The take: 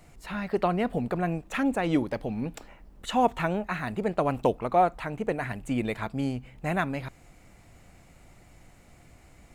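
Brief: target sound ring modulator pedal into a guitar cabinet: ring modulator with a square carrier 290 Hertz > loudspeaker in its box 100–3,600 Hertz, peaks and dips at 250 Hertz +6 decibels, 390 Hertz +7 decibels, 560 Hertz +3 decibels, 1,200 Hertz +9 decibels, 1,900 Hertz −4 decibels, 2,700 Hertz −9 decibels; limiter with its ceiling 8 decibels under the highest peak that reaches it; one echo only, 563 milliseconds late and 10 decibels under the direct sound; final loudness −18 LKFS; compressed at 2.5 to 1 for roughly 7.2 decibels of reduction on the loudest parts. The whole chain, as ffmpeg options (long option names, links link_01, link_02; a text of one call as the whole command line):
ffmpeg -i in.wav -af "acompressor=threshold=-28dB:ratio=2.5,alimiter=limit=-23.5dB:level=0:latency=1,aecho=1:1:563:0.316,aeval=exprs='val(0)*sgn(sin(2*PI*290*n/s))':channel_layout=same,highpass=100,equalizer=frequency=250:width_type=q:width=4:gain=6,equalizer=frequency=390:width_type=q:width=4:gain=7,equalizer=frequency=560:width_type=q:width=4:gain=3,equalizer=frequency=1200:width_type=q:width=4:gain=9,equalizer=frequency=1900:width_type=q:width=4:gain=-4,equalizer=frequency=2700:width_type=q:width=4:gain=-9,lowpass=frequency=3600:width=0.5412,lowpass=frequency=3600:width=1.3066,volume=14dB" out.wav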